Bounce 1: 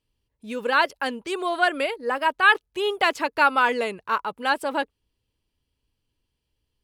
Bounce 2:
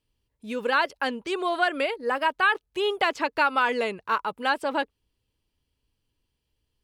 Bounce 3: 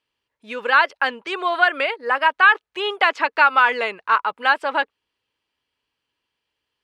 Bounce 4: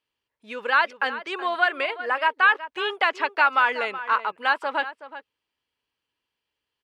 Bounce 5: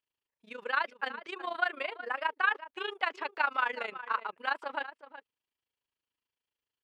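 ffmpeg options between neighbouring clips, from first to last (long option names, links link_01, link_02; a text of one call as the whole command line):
ffmpeg -i in.wav -filter_complex "[0:a]acrossover=split=1700|7200[link_01][link_02][link_03];[link_01]acompressor=threshold=-21dB:ratio=4[link_04];[link_02]acompressor=threshold=-27dB:ratio=4[link_05];[link_03]acompressor=threshold=-59dB:ratio=4[link_06];[link_04][link_05][link_06]amix=inputs=3:normalize=0" out.wav
ffmpeg -i in.wav -af "bandpass=frequency=1600:width_type=q:width=0.8:csg=0,volume=9dB" out.wav
ffmpeg -i in.wav -filter_complex "[0:a]asplit=2[link_01][link_02];[link_02]adelay=373.2,volume=-13dB,highshelf=frequency=4000:gain=-8.4[link_03];[link_01][link_03]amix=inputs=2:normalize=0,volume=-4.5dB" out.wav
ffmpeg -i in.wav -af "tremolo=f=27:d=0.824,volume=-6.5dB" out.wav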